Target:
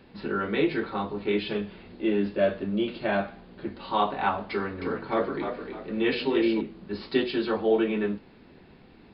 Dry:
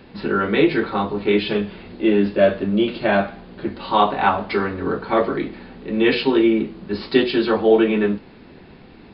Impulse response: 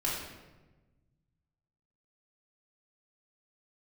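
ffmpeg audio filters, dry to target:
-filter_complex "[0:a]asettb=1/sr,asplit=3[link_01][link_02][link_03];[link_01]atrim=end=4.514[link_04];[link_02]atrim=start=4.51:end=6.61,asetpts=PTS-STARTPTS,afade=type=in:duration=0.004:curve=qsin,afade=type=out:start_time=2.096:duration=0.004:curve=qsin,asplit=5[link_05][link_06][link_07][link_08][link_09];[link_06]adelay=304,afreqshift=45,volume=-7dB[link_10];[link_07]adelay=608,afreqshift=90,volume=-16.6dB[link_11];[link_08]adelay=912,afreqshift=135,volume=-26.3dB[link_12];[link_09]adelay=1216,afreqshift=180,volume=-35.9dB[link_13];[link_05][link_10][link_11][link_12][link_13]amix=inputs=5:normalize=0,atrim=end_sample=92610[link_14];[link_03]atrim=start=6.606[link_15];[link_04][link_14]acrossfade=duration=0.004:curve1=hsin:curve2=qsin[link_16];[link_16][link_15]acrossfade=duration=0.004:curve1=qsin:curve2=hsin,volume=-8.5dB"

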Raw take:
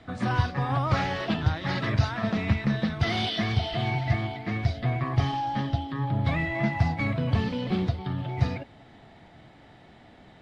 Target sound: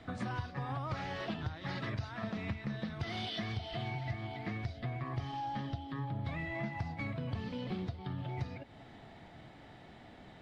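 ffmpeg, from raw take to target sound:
ffmpeg -i in.wav -af "acompressor=threshold=-35dB:ratio=4,volume=-2dB" out.wav

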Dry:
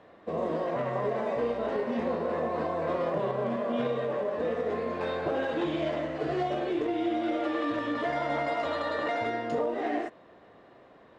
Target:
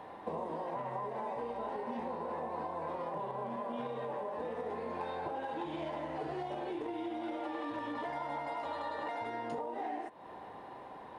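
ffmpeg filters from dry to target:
ffmpeg -i in.wav -af "superequalizer=9b=3.55:16b=3.16,acompressor=threshold=-39dB:ratio=10,volume=3dB" out.wav

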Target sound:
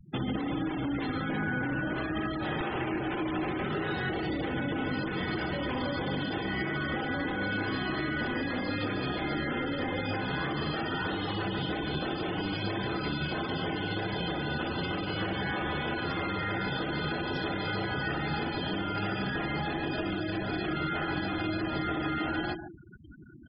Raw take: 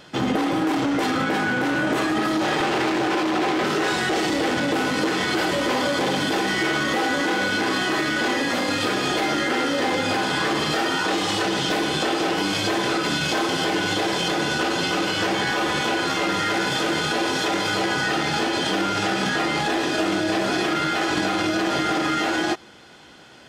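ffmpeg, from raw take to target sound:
ffmpeg -i in.wav -filter_complex "[0:a]areverse,acompressor=mode=upward:threshold=-41dB:ratio=2.5,areverse,aemphasis=mode=reproduction:type=riaa,acrossover=split=140|2000[link_01][link_02][link_03];[link_01]acompressor=threshold=-35dB:ratio=4[link_04];[link_02]acompressor=threshold=-29dB:ratio=4[link_05];[link_03]acompressor=threshold=-45dB:ratio=4[link_06];[link_04][link_05][link_06]amix=inputs=3:normalize=0,equalizer=frequency=4800:width=0.32:gain=11.5,bandreject=frequency=111.8:width_type=h:width=4,bandreject=frequency=223.6:width_type=h:width=4,bandreject=frequency=335.4:width_type=h:width=4,bandreject=frequency=447.2:width_type=h:width=4,bandreject=frequency=559:width_type=h:width=4,bandreject=frequency=670.8:width_type=h:width=4,bandreject=frequency=782.6:width_type=h:width=4,bandreject=frequency=894.4:width_type=h:width=4,bandreject=frequency=1006.2:width_type=h:width=4,bandreject=frequency=1118:width_type=h:width=4,bandreject=frequency=1229.8:width_type=h:width=4,bandreject=frequency=1341.6:width_type=h:width=4,bandreject=frequency=1453.4:width_type=h:width=4,bandreject=frequency=1565.2:width_type=h:width=4,bandreject=frequency=1677:width_type=h:width=4,bandreject=frequency=1788.8:width_type=h:width=4,bandreject=frequency=1900.6:width_type=h:width=4,bandreject=frequency=2012.4:width_type=h:width=4,bandreject=frequency=2124.2:width_type=h:width=4,bandreject=frequency=2236:width_type=h:width=4,bandreject=frequency=2347.8:width_type=h:width=4,bandreject=frequency=2459.6:width_type=h:width=4,bandreject=frequency=2571.4:width_type=h:width=4,bandreject=frequency=2683.2:width_type=h:width=4,bandreject=frequency=2795:width_type=h:width=4,bandreject=frequency=2906.8:width_type=h:width=4,bandreject=frequency=3018.6:width_type=h:width=4,bandreject=frequency=3130.4:width_type=h:width=4,bandreject=frequency=3242.2:width_type=h:width=4,bandreject=frequency=3354:width_type=h:width=4,bandreject=frequency=3465.8:width_type=h:width=4,bandreject=frequency=3577.6:width_type=h:width=4,bandreject=frequency=3689.4:width_type=h:width=4,bandreject=frequency=3801.2:width_type=h:width=4,bandreject=frequency=3913:width_type=h:width=4,bandreject=frequency=4024.8:width_type=h:width=4,bandreject=frequency=4136.6:width_type=h:width=4,bandreject=frequency=4248.4:width_type=h:width=4,bandreject=frequency=4360.2:width_type=h:width=4,asplit=2[link_07][link_08];[link_08]adelay=146,lowpass=frequency=4700:poles=1,volume=-8dB,asplit=2[link_09][link_10];[link_10]adelay=146,lowpass=frequency=4700:poles=1,volume=0.23,asplit=2[link_11][link_12];[link_12]adelay=146,lowpass=frequency=4700:poles=1,volume=0.23[link_13];[link_09][link_11][link_13]amix=inputs=3:normalize=0[link_14];[link_07][link_14]amix=inputs=2:normalize=0,afftfilt=real='re*gte(hypot(re,im),0.0398)':imag='im*gte(hypot(re,im),0.0398)':win_size=1024:overlap=0.75,volume=-5.5dB" out.wav

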